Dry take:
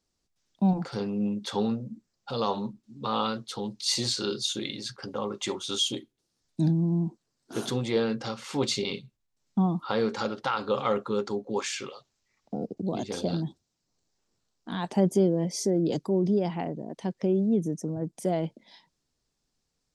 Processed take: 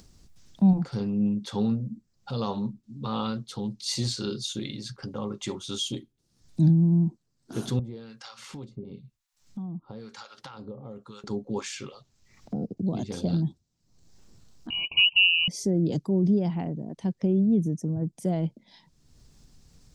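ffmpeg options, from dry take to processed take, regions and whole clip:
ffmpeg -i in.wav -filter_complex "[0:a]asettb=1/sr,asplit=3[link_01][link_02][link_03];[link_01]atrim=end=7.794[link_04];[link_02]atrim=start=7.79:end=11.24,asetpts=PTS-STARTPTS,afade=type=in:duration=0.004:curve=qsin,afade=type=out:start_time=3.446:duration=0.004:curve=qsin,acrossover=split=1000|4100[link_05][link_06][link_07];[link_05]acompressor=threshold=-37dB:ratio=4[link_08];[link_06]acompressor=threshold=-45dB:ratio=4[link_09];[link_07]acompressor=threshold=-49dB:ratio=4[link_10];[link_08][link_09][link_10]amix=inputs=3:normalize=0,acrossover=split=780[link_11][link_12];[link_11]aeval=exprs='val(0)*(1-1/2+1/2*cos(2*PI*1*n/s))':channel_layout=same[link_13];[link_12]aeval=exprs='val(0)*(1-1/2-1/2*cos(2*PI*1*n/s))':channel_layout=same[link_14];[link_13][link_14]amix=inputs=2:normalize=0[link_15];[link_03]atrim=start=11.236[link_16];[link_04][link_15]acrossfade=duration=0.004:curve1=hsin:curve2=qsin[link_17];[link_17][link_16]acrossfade=duration=0.004:curve1=qsin:curve2=hsin,asettb=1/sr,asplit=3[link_18][link_19][link_20];[link_18]atrim=end=14.704[link_21];[link_19]atrim=start=14.7:end=15.48,asetpts=PTS-STARTPTS,afade=type=in:duration=0.004:curve=qsin,afade=type=out:start_time=0.776:duration=0.004:curve=qsin,acontrast=84,lowpass=frequency=2600:width_type=q:width=0.5098,lowpass=frequency=2600:width_type=q:width=0.6013,lowpass=frequency=2600:width_type=q:width=0.9,lowpass=frequency=2600:width_type=q:width=2.563,afreqshift=-3100,asuperstop=centerf=1600:order=20:qfactor=1.3[link_22];[link_20]atrim=start=15.476[link_23];[link_21][link_22]acrossfade=duration=0.004:curve1=hsin:curve2=qsin[link_24];[link_24][link_23]acrossfade=duration=0.004:curve1=qsin:curve2=hsin,bass=frequency=250:gain=13,treble=frequency=4000:gain=2,acompressor=mode=upward:threshold=-32dB:ratio=2.5,volume=-5dB" out.wav

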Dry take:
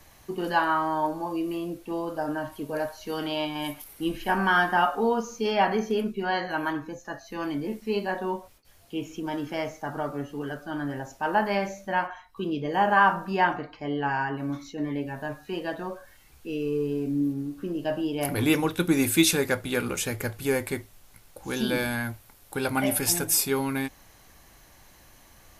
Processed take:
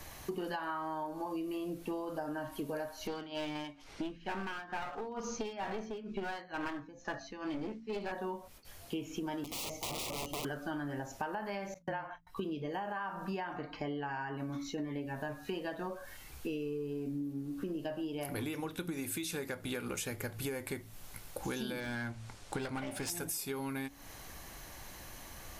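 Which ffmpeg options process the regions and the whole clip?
ffmpeg -i in.wav -filter_complex "[0:a]asettb=1/sr,asplit=3[link_01][link_02][link_03];[link_01]atrim=end=3.074[link_04];[link_02]atrim=start=3.07:end=8.12,asetpts=PTS-STARTPTS,afade=type=in:duration=0.004:curve=qsin,afade=type=out:start_time=5.046:duration=0.004:curve=qsin,lowpass=frequency=6100:width=0.5412,lowpass=frequency=6100:width=1.3066,tremolo=f=2.2:d=0.9,aeval=exprs='clip(val(0),-1,0.0178)':channel_layout=same[link_05];[link_03]atrim=start=8.116[link_06];[link_04][link_05]acrossfade=duration=0.004:curve1=hsin:curve2=qsin[link_07];[link_07][link_06]acrossfade=duration=0.004:curve1=qsin:curve2=hsin,asettb=1/sr,asplit=3[link_08][link_09][link_10];[link_08]atrim=end=9.444[link_11];[link_09]atrim=start=9.44:end=10.45,asetpts=PTS-STARTPTS,afade=type=in:duration=0.004:curve=qsin,afade=type=out:start_time=1.006:duration=0.004:curve=qsin,aeval=exprs='(mod(42.2*val(0)+1,2)-1)/42.2':channel_layout=same,asuperstop=centerf=1600:order=4:qfactor=1.4[link_12];[link_10]atrim=start=10.446[link_13];[link_11][link_12]acrossfade=duration=0.004:curve1=hsin:curve2=qsin[link_14];[link_14][link_13]acrossfade=duration=0.004:curve1=qsin:curve2=hsin,asettb=1/sr,asplit=3[link_15][link_16][link_17];[link_15]atrim=end=11.744[link_18];[link_16]atrim=start=11.74:end=12.27,asetpts=PTS-STARTPTS,afade=type=in:duration=0.004:curve=qsin,afade=type=out:start_time=0.526:duration=0.004:curve=qsin,agate=range=-45dB:threshold=-43dB:ratio=16:release=100:detection=peak,highshelf=frequency=4500:gain=-9.5,afreqshift=-24[link_19];[link_17]atrim=start=12.266[link_20];[link_18][link_19]acrossfade=duration=0.004:curve1=hsin:curve2=qsin[link_21];[link_21][link_20]acrossfade=duration=0.004:curve1=qsin:curve2=hsin,asettb=1/sr,asplit=3[link_22][link_23][link_24];[link_22]atrim=end=21.804[link_25];[link_23]atrim=start=21.8:end=23.1,asetpts=PTS-STARTPTS,afade=type=in:duration=0.004:curve=qsin,afade=type=out:start_time=1.296:duration=0.004:curve=qsin,lowpass=frequency=8200:width=0.5412,lowpass=frequency=8200:width=1.3066,aeval=exprs='clip(val(0),-1,0.0376)':channel_layout=same[link_26];[link_24]atrim=start=23.096[link_27];[link_25][link_26]acrossfade=duration=0.004:curve1=hsin:curve2=qsin[link_28];[link_28][link_27]acrossfade=duration=0.004:curve1=qsin:curve2=hsin,bandreject=frequency=56.25:width_type=h:width=4,bandreject=frequency=112.5:width_type=h:width=4,bandreject=frequency=168.75:width_type=h:width=4,bandreject=frequency=225:width_type=h:width=4,bandreject=frequency=281.25:width_type=h:width=4,alimiter=limit=-17.5dB:level=0:latency=1:release=155,acompressor=threshold=-40dB:ratio=16,volume=5dB" out.wav

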